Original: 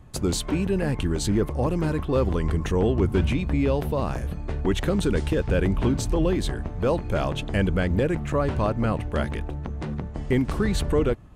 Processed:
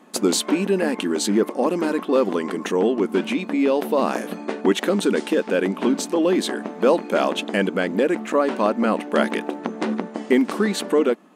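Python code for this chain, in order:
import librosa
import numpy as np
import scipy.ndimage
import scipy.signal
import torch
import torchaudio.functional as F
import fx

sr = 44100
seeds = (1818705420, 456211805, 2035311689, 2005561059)

y = fx.rider(x, sr, range_db=5, speed_s=0.5)
y = fx.brickwall_highpass(y, sr, low_hz=190.0)
y = y * 10.0 ** (6.0 / 20.0)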